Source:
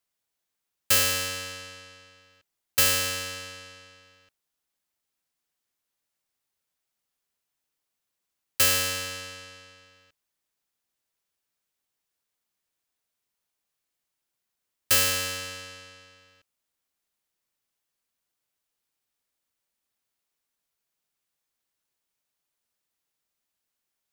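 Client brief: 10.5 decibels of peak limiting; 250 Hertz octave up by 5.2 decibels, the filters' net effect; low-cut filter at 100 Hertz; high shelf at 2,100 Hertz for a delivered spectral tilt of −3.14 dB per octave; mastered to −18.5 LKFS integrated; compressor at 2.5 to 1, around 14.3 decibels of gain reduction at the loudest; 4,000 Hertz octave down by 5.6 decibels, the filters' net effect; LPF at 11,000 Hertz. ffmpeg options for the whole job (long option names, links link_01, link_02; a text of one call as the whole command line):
ffmpeg -i in.wav -af "highpass=100,lowpass=11000,equalizer=frequency=250:width_type=o:gain=6.5,highshelf=frequency=2100:gain=-4.5,equalizer=frequency=4000:width_type=o:gain=-3,acompressor=threshold=-45dB:ratio=2.5,volume=28dB,alimiter=limit=-7.5dB:level=0:latency=1" out.wav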